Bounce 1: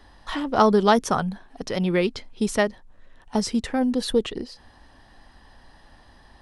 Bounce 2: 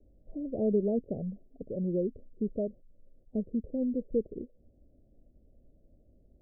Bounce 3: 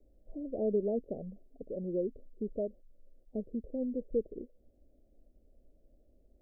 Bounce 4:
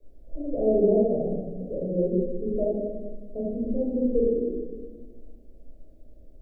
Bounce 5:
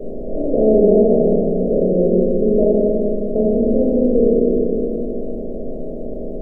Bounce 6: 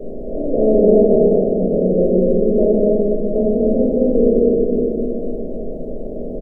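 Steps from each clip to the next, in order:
steep low-pass 610 Hz 72 dB/oct; gain -8 dB
bell 120 Hz -12.5 dB 1.7 oct
shoebox room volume 1000 m³, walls mixed, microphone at 5.5 m
per-bin compression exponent 0.4; gain +5 dB
echo 0.25 s -5 dB; gain -1 dB

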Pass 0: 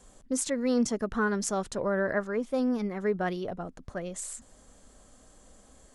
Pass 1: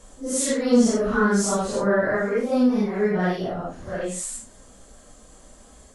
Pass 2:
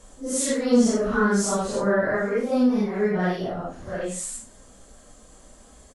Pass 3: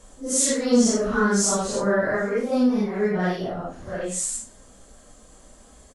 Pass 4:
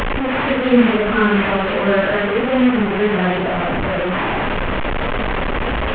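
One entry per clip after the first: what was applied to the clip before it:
phase scrambler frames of 0.2 s; gain +7.5 dB
echo 0.112 s -22.5 dB; gain -1 dB
dynamic EQ 6400 Hz, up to +7 dB, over -44 dBFS, Q 0.95
delta modulation 16 kbps, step -18.5 dBFS; gain +5.5 dB

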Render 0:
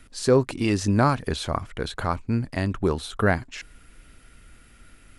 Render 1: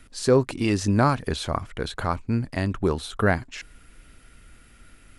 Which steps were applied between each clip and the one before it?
nothing audible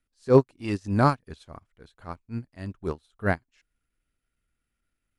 transient shaper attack -7 dB, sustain -3 dB; upward expander 2.5:1, over -38 dBFS; gain +5 dB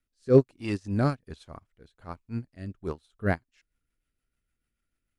rotary speaker horn 1.2 Hz, later 6.7 Hz, at 2.86

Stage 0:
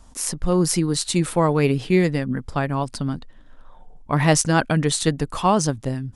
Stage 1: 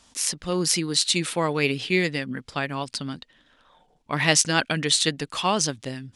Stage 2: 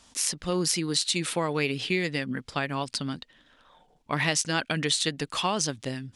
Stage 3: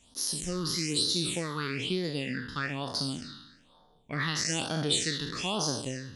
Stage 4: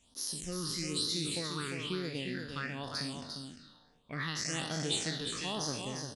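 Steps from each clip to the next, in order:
weighting filter D; gain -5 dB
compressor 4:1, threshold -23 dBFS, peak gain reduction 8.5 dB
spectral trails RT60 0.99 s; phaser stages 6, 1.1 Hz, lowest notch 620–2400 Hz; gain -4 dB
echo 0.35 s -6 dB; gain -6 dB

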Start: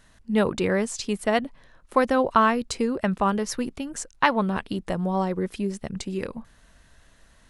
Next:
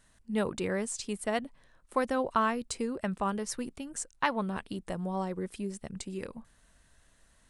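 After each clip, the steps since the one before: bell 8700 Hz +8.5 dB 0.57 oct; gain -8.5 dB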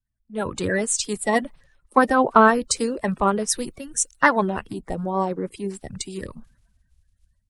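bin magnitudes rounded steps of 30 dB; AGC gain up to 8 dB; three-band expander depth 70%; gain +2 dB

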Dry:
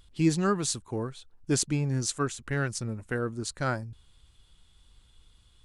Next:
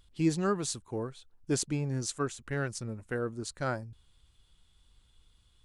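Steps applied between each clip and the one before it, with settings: dynamic EQ 540 Hz, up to +4 dB, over -39 dBFS, Q 0.89; gain -5 dB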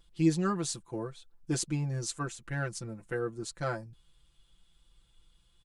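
comb 5.9 ms, depth 95%; gain -3.5 dB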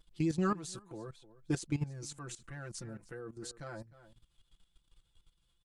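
vibrato 7.9 Hz 41 cents; outdoor echo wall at 52 m, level -18 dB; level quantiser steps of 15 dB; gain +1 dB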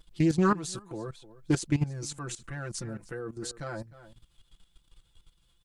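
Doppler distortion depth 0.15 ms; gain +7.5 dB

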